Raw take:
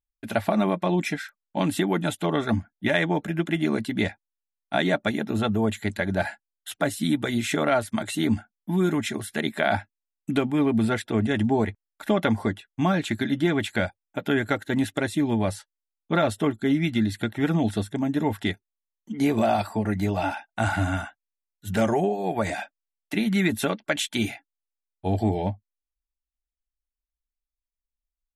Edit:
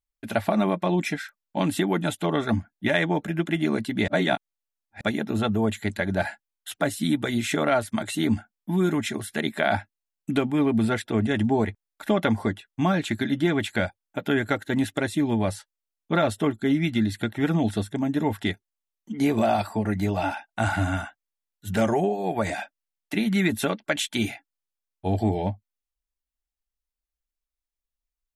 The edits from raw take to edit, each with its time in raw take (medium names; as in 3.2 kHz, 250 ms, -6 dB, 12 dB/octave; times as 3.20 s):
4.08–5.01 s: reverse